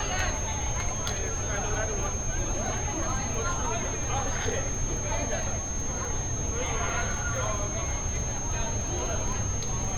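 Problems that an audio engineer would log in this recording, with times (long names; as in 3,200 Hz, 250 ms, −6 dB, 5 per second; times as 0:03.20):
surface crackle 14 per second −33 dBFS
whistle 6,400 Hz −33 dBFS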